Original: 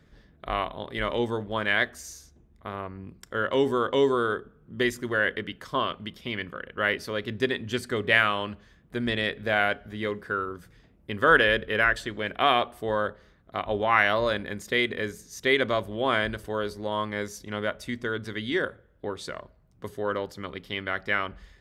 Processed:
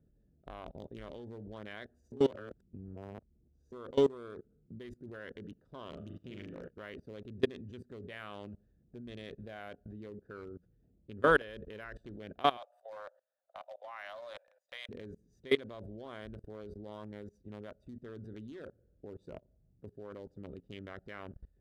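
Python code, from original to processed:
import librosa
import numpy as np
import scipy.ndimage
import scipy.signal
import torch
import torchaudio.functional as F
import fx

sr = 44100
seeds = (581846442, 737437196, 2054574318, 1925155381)

y = fx.room_flutter(x, sr, wall_m=6.8, rt60_s=0.78, at=(5.89, 6.7))
y = fx.steep_highpass(y, sr, hz=540.0, slope=96, at=(12.57, 14.89))
y = fx.edit(y, sr, fx.reverse_span(start_s=2.12, length_s=1.6), tone=tone)
y = fx.wiener(y, sr, points=41)
y = fx.peak_eq(y, sr, hz=2000.0, db=-7.0, octaves=1.7)
y = fx.level_steps(y, sr, step_db=23)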